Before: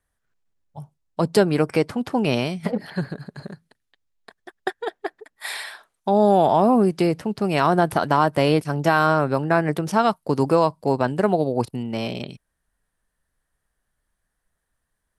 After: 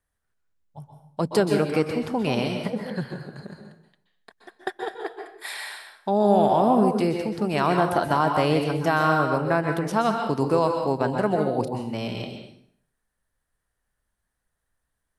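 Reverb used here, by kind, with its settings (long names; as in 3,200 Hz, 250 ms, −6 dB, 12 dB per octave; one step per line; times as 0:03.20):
dense smooth reverb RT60 0.64 s, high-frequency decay 0.85×, pre-delay 115 ms, DRR 3.5 dB
level −4 dB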